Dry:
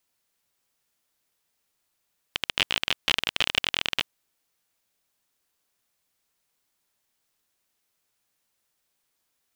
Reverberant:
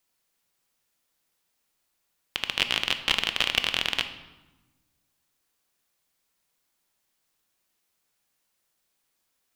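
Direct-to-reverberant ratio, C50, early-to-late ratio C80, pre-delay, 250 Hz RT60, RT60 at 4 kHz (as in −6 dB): 8.0 dB, 10.5 dB, 13.0 dB, 3 ms, 1.7 s, 0.80 s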